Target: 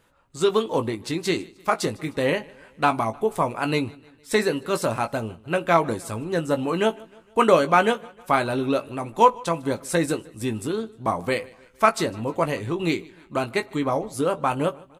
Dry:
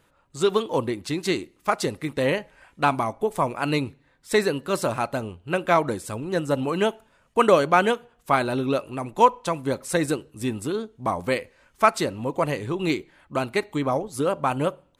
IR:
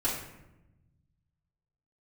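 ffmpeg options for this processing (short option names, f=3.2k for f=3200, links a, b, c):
-filter_complex "[0:a]asplit=2[a][b];[b]adelay=18,volume=-8.5dB[c];[a][c]amix=inputs=2:normalize=0,asplit=2[d][e];[e]aecho=0:1:153|306|459:0.0631|0.0328|0.0171[f];[d][f]amix=inputs=2:normalize=0"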